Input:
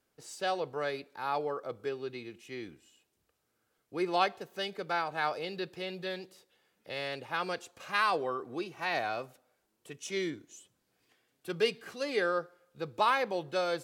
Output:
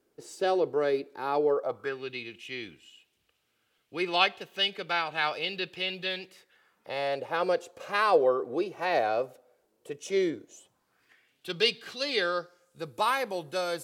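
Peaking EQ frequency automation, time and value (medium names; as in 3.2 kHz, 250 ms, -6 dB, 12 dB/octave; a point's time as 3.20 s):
peaking EQ +13 dB 1.1 oct
1.47 s 370 Hz
2.10 s 2.9 kHz
6.17 s 2.9 kHz
7.29 s 500 Hz
10.45 s 500 Hz
11.51 s 3.7 kHz
12.33 s 3.7 kHz
12.88 s 11 kHz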